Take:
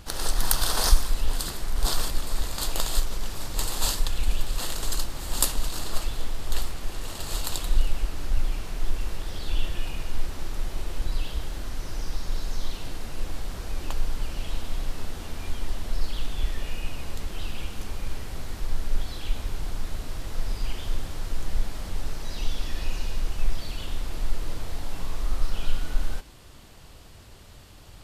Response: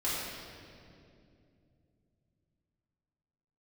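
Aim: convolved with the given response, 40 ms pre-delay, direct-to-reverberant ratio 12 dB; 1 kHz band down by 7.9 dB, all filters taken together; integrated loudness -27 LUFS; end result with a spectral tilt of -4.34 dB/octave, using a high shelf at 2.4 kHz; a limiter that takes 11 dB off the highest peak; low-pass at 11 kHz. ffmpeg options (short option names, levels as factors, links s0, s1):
-filter_complex "[0:a]lowpass=11000,equalizer=f=1000:t=o:g=-9,highshelf=f=2400:g=-7.5,alimiter=limit=0.168:level=0:latency=1,asplit=2[s0][s1];[1:a]atrim=start_sample=2205,adelay=40[s2];[s1][s2]afir=irnorm=-1:irlink=0,volume=0.106[s3];[s0][s3]amix=inputs=2:normalize=0,volume=2.66"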